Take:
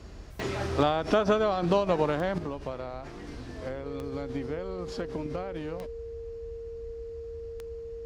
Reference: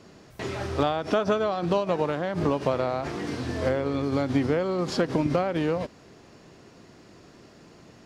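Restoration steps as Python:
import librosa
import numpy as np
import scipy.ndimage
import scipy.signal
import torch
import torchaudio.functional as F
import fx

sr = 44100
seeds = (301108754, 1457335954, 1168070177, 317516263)

y = fx.fix_declick_ar(x, sr, threshold=10.0)
y = fx.notch(y, sr, hz=460.0, q=30.0)
y = fx.noise_reduce(y, sr, print_start_s=0.0, print_end_s=0.5, reduce_db=11.0)
y = fx.fix_level(y, sr, at_s=2.38, step_db=11.0)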